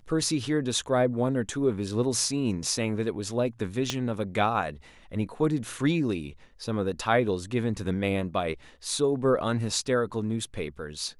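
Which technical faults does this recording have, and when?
0:03.90: click −13 dBFS

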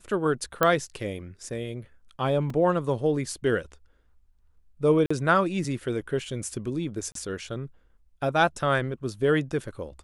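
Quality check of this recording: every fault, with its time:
0:00.63: click −7 dBFS
0:02.50: drop-out 3 ms
0:05.06–0:05.11: drop-out 45 ms
0:07.12–0:07.15: drop-out 33 ms

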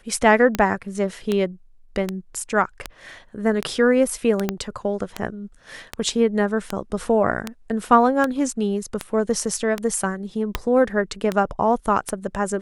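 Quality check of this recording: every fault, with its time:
scratch tick 78 rpm −8 dBFS
0:04.49: click −8 dBFS

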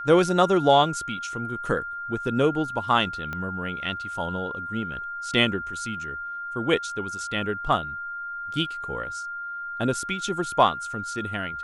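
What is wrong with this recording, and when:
whistle 1,400 Hz −31 dBFS
0:03.33: click −19 dBFS

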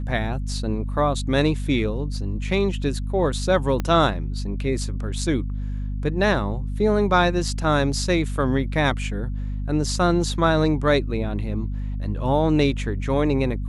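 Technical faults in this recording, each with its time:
mains hum 50 Hz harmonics 5 −27 dBFS
0:03.80: click −12 dBFS

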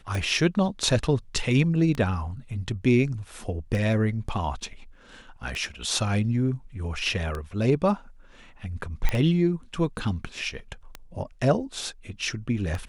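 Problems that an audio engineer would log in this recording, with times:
scratch tick 33 1/3 rpm
0:09.09: click −11 dBFS

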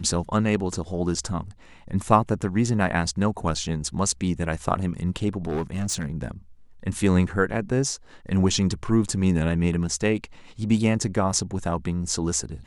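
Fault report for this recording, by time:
0:05.47–0:06.10: clipping −22 dBFS

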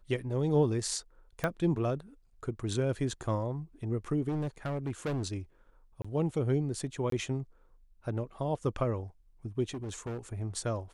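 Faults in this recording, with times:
0:01.44: click −16 dBFS
0:04.28–0:05.27: clipping −29.5 dBFS
0:06.02–0:06.04: drop-out 25 ms
0:07.10–0:07.12: drop-out 23 ms
0:09.74–0:10.19: clipping −34 dBFS

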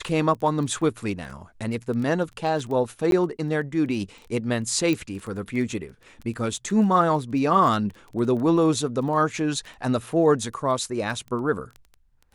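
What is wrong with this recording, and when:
surface crackle 10 per second −31 dBFS
0:03.11–0:03.12: drop-out 12 ms
0:04.93: click −13 dBFS

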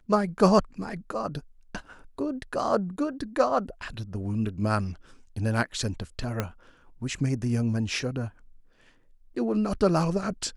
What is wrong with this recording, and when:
0:06.40: click −12 dBFS

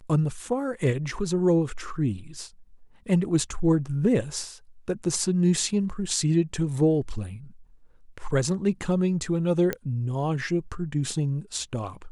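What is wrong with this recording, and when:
0:09.73: click −13 dBFS

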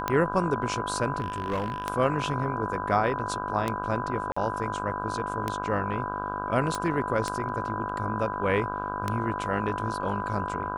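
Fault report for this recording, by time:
mains buzz 50 Hz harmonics 32 −35 dBFS
scratch tick 33 1/3 rpm −12 dBFS
whistle 1,000 Hz −33 dBFS
0:01.20–0:01.86: clipping −24 dBFS
0:04.32–0:04.37: drop-out 45 ms
0:06.75: click

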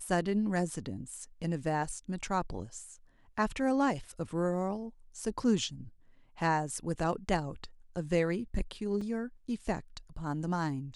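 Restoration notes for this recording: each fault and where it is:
0:09.01: drop-out 4 ms

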